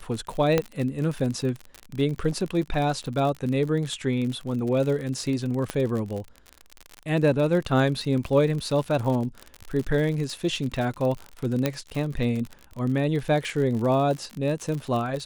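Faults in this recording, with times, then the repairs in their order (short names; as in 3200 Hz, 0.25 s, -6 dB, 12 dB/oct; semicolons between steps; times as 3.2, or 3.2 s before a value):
crackle 53/s -29 dBFS
0.58 pop -8 dBFS
5.7 pop -13 dBFS
11.66 pop -9 dBFS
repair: de-click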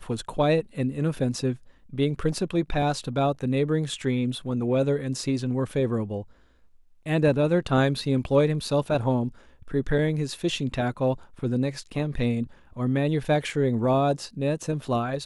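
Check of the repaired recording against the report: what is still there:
5.7 pop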